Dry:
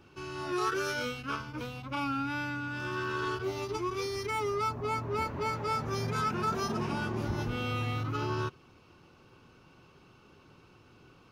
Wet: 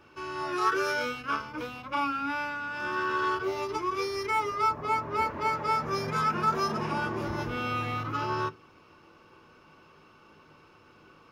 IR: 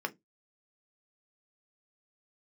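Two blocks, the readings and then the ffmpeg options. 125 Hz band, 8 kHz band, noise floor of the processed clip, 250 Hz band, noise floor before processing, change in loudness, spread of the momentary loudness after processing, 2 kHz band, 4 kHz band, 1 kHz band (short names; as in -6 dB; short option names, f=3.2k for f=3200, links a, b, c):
-3.5 dB, -1.0 dB, -57 dBFS, 0.0 dB, -59 dBFS, +3.5 dB, 6 LU, +4.5 dB, +1.5 dB, +6.0 dB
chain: -filter_complex "[0:a]asplit=2[a][b];[b]highpass=f=92:w=0.5412,highpass=f=92:w=1.3066[c];[1:a]atrim=start_sample=2205[d];[c][d]afir=irnorm=-1:irlink=0,volume=0.5dB[e];[a][e]amix=inputs=2:normalize=0,volume=-4dB"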